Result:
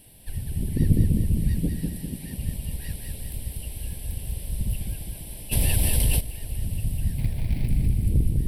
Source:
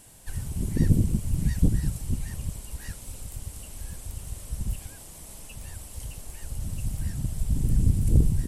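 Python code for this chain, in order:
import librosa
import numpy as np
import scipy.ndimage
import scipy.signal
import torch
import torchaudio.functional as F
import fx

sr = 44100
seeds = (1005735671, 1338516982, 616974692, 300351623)

y = fx.highpass(x, sr, hz=190.0, slope=12, at=(1.59, 2.38))
y = fx.sample_hold(y, sr, seeds[0], rate_hz=2300.0, jitter_pct=20, at=(7.18, 7.68))
y = fx.peak_eq(y, sr, hz=11000.0, db=4.0, octaves=0.89)
y = fx.fixed_phaser(y, sr, hz=3000.0, stages=4)
y = fx.dmg_crackle(y, sr, seeds[1], per_s=240.0, level_db=-61.0)
y = fx.rider(y, sr, range_db=4, speed_s=2.0)
y = fx.echo_feedback(y, sr, ms=200, feedback_pct=54, wet_db=-4.5)
y = fx.env_flatten(y, sr, amount_pct=70, at=(5.51, 6.19), fade=0.02)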